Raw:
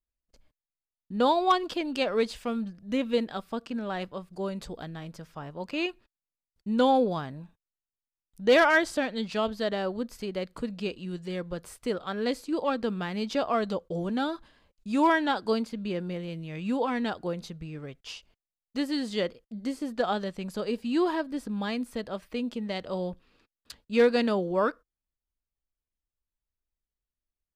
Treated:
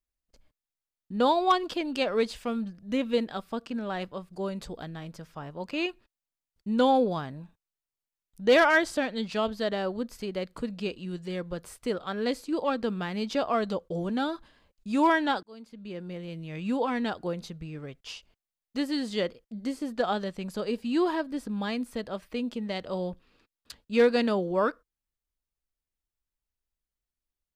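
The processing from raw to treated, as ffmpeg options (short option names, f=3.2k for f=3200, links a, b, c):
-filter_complex "[0:a]asplit=2[a][b];[a]atrim=end=15.43,asetpts=PTS-STARTPTS,afade=t=out:st=15.426:d=0.004:c=hsin[c];[b]atrim=start=15.43,asetpts=PTS-STARTPTS,afade=t=in:d=1.12[d];[c][d]concat=n=2:v=0:a=1"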